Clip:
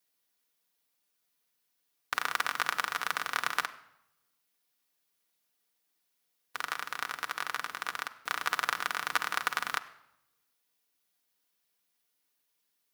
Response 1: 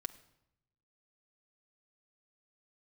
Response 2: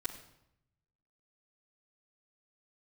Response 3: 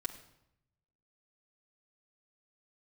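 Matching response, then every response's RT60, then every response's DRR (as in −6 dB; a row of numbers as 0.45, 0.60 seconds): 1; 0.80, 0.80, 0.80 seconds; 5.5, −10.0, −2.0 decibels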